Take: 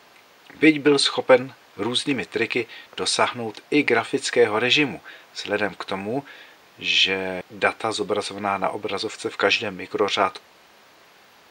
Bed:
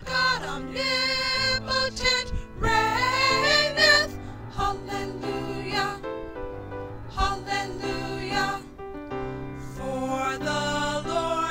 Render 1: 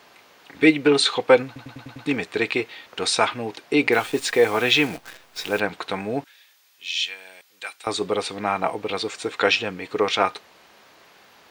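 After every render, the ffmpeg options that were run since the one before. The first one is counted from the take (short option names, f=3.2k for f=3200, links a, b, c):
-filter_complex "[0:a]asettb=1/sr,asplit=3[a][b][c];[a]atrim=end=3.924[d];[b]atrim=start=3.92:end=5.6,asetpts=PTS-STARTPTS,afade=t=in:d=0.004:c=qsin,afade=t=out:st=1.676:d=0.004:c=qsin,acrusher=bits=7:dc=4:mix=0:aa=0.000001[e];[c]atrim=start=5.596[f];[d][e]acrossfade=d=0.004:c1=hsin:c2=qsin[g];[g][f]acrossfade=d=0.004:c1=qsin:c2=hsin,asettb=1/sr,asplit=3[h][i][j];[h]atrim=end=6.244[k];[i]atrim=start=6.24:end=7.87,asetpts=PTS-STARTPTS,afade=t=in:d=0.004:c=qsin,afade=t=out:st=1.626:d=0.004:c=qsin,aderivative[l];[j]atrim=start=7.866[m];[k][l]acrossfade=d=0.004:c1=hsin:c2=qsin[n];[n][m]acrossfade=d=0.004:c1=qsin:c2=hsin,asplit=7[o][p][q][r][s][t][u];[o]atrim=end=1.562[v];[p]atrim=start=1.458:end=1.562[w];[q]atrim=start=1.458:end=1.562[x];[r]atrim=start=1.458:end=1.562[y];[s]atrim=start=1.458:end=1.562[z];[t]atrim=start=1.458:end=1.562[aa];[u]atrim=start=2.058[ab];[v][w]acrossfade=d=0.004:c1=hsin:c2=hsin[ac];[ac][x]acrossfade=d=0.004:c1=hsin:c2=hsin[ad];[ad][y]acrossfade=d=0.004:c1=hsin:c2=hsin[ae];[ae][z]acrossfade=d=0.004:c1=hsin:c2=hsin[af];[af][aa]acrossfade=d=0.004:c1=hsin:c2=hsin[ag];[ag][ab]acrossfade=d=0.004:c1=hsin:c2=hsin"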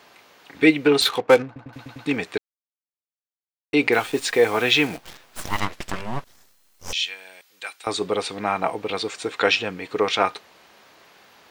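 -filter_complex "[0:a]asettb=1/sr,asplit=3[a][b][c];[a]atrim=end=1.014[d];[b]atrim=start=1.01:end=1.73,asetpts=PTS-STARTPTS,afade=t=in:d=0.004:c=qsin,afade=t=out:st=0.716:d=0.004:c=qsin,adynamicsmooth=sensitivity=5:basefreq=970[e];[c]atrim=start=1.726[f];[d][e]acrossfade=d=0.004:c1=hsin:c2=qsin[g];[g][f]acrossfade=d=0.004:c1=qsin:c2=hsin,asettb=1/sr,asplit=3[h][i][j];[h]atrim=end=5.014[k];[i]atrim=start=5.01:end=6.93,asetpts=PTS-STARTPTS,afade=t=in:d=0.004:c=qsin,afade=t=out:st=1.916:d=0.004:c=qsin,aeval=exprs='abs(val(0))':c=same[l];[j]atrim=start=6.926[m];[k][l]acrossfade=d=0.004:c1=hsin:c2=qsin[n];[n][m]acrossfade=d=0.004:c1=qsin:c2=hsin,asplit=3[o][p][q];[o]atrim=end=2.38,asetpts=PTS-STARTPTS,afade=t=out:st=2.376:d=0.004:c=hsin[r];[p]atrim=start=2.38:end=3.73,asetpts=PTS-STARTPTS,volume=0[s];[q]atrim=start=3.73,asetpts=PTS-STARTPTS,afade=t=in:d=0.004:c=hsin[t];[r][s][t]concat=n=3:v=0:a=1"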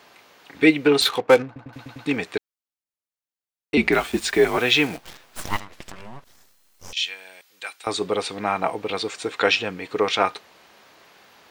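-filter_complex "[0:a]asettb=1/sr,asplit=3[a][b][c];[a]atrim=end=3.774[d];[b]atrim=start=3.77:end=4.58,asetpts=PTS-STARTPTS,afade=t=in:d=0.004:c=qsin,afade=t=out:st=0.806:d=0.004:c=qsin,afreqshift=-64[e];[c]atrim=start=4.576[f];[d][e]acrossfade=d=0.004:c1=hsin:c2=qsin[g];[g][f]acrossfade=d=0.004:c1=qsin:c2=hsin,asettb=1/sr,asplit=3[h][i][j];[h]atrim=end=5.574[k];[i]atrim=start=5.57:end=6.97,asetpts=PTS-STARTPTS,afade=t=in:d=0.004:c=qsin,afade=t=out:st=1.396:d=0.004:c=qsin,acompressor=threshold=-33dB:ratio=8:attack=3.2:release=140:knee=1:detection=peak[l];[j]atrim=start=6.966[m];[k][l]acrossfade=d=0.004:c1=hsin:c2=qsin[n];[n][m]acrossfade=d=0.004:c1=qsin:c2=hsin"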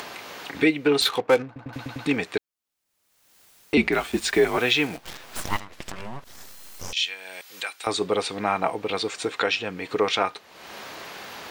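-af "alimiter=limit=-9dB:level=0:latency=1:release=443,acompressor=mode=upward:threshold=-26dB:ratio=2.5"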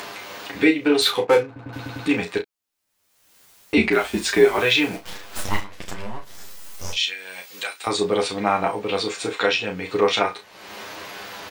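-filter_complex "[0:a]asplit=2[a][b];[b]adelay=34,volume=-8dB[c];[a][c]amix=inputs=2:normalize=0,aecho=1:1:10|32:0.708|0.299"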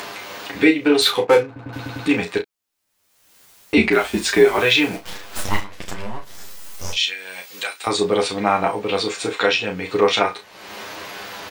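-af "volume=2.5dB,alimiter=limit=-2dB:level=0:latency=1"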